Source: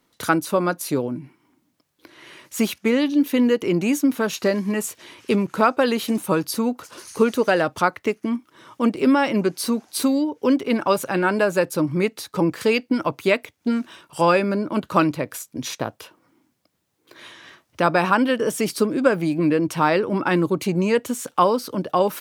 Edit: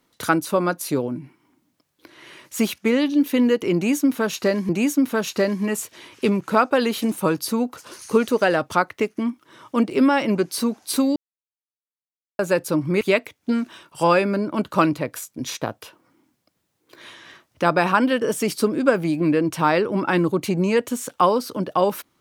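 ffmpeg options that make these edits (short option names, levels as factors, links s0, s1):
-filter_complex "[0:a]asplit=5[s0][s1][s2][s3][s4];[s0]atrim=end=4.692[s5];[s1]atrim=start=3.748:end=10.22,asetpts=PTS-STARTPTS,afade=t=out:st=6.468:d=0.004:c=hsin[s6];[s2]atrim=start=10.22:end=11.45,asetpts=PTS-STARTPTS,volume=0[s7];[s3]atrim=start=11.45:end=12.072,asetpts=PTS-STARTPTS,afade=t=in:d=0.004:c=hsin[s8];[s4]atrim=start=13.188[s9];[s6][s7][s8]concat=n=3:v=0:a=1[s10];[s5][s10]acrossfade=d=0.004:c1=hsin:c2=hsin[s11];[s11][s9]acrossfade=d=0.004:c1=hsin:c2=hsin"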